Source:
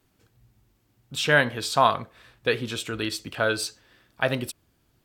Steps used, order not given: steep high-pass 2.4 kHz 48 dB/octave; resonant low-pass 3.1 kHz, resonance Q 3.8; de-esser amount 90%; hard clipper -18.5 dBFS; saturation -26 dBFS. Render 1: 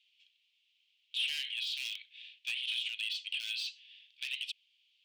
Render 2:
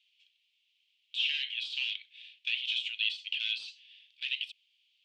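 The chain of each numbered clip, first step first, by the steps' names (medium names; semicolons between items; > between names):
resonant low-pass > de-esser > hard clipper > steep high-pass > saturation; hard clipper > steep high-pass > de-esser > saturation > resonant low-pass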